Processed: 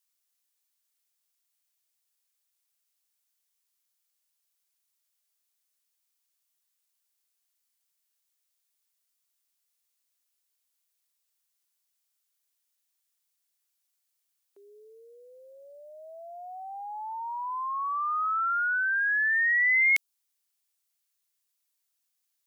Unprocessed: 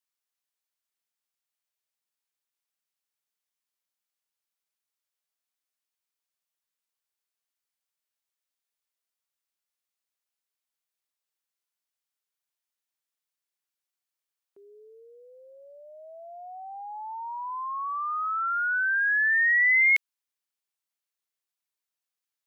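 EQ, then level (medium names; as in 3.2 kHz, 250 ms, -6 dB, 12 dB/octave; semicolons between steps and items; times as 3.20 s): treble shelf 3.5 kHz +11 dB; dynamic bell 2 kHz, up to -5 dB, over -30 dBFS, Q 1.3; high-pass 350 Hz; 0.0 dB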